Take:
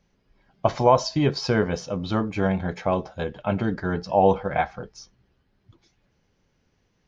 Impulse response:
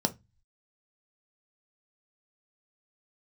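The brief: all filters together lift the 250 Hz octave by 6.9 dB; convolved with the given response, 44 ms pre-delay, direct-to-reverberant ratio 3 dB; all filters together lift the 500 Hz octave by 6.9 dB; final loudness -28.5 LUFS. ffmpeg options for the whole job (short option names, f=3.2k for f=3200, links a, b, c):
-filter_complex "[0:a]equalizer=f=250:t=o:g=7.5,equalizer=f=500:t=o:g=6.5,asplit=2[a][b];[1:a]atrim=start_sample=2205,adelay=44[c];[b][c]afir=irnorm=-1:irlink=0,volume=-10dB[d];[a][d]amix=inputs=2:normalize=0,volume=-15.5dB"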